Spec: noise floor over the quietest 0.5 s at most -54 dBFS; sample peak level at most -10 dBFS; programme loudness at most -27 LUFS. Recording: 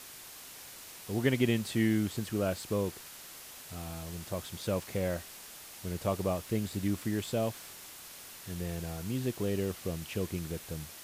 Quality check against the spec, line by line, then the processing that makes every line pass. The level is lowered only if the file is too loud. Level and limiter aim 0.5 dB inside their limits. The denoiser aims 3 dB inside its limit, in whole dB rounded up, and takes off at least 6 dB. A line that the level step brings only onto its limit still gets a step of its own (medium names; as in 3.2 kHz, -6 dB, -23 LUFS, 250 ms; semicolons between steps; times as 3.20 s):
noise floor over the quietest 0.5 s -49 dBFS: fail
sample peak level -14.5 dBFS: pass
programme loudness -34.0 LUFS: pass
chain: noise reduction 8 dB, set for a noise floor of -49 dBFS